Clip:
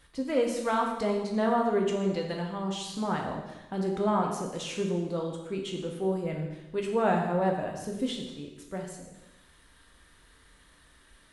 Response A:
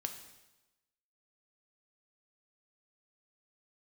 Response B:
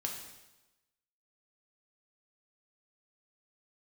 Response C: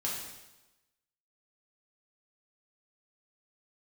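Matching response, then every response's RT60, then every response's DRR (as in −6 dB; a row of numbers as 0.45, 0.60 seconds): B; 1.0, 1.0, 1.0 seconds; 5.5, 0.0, −5.0 decibels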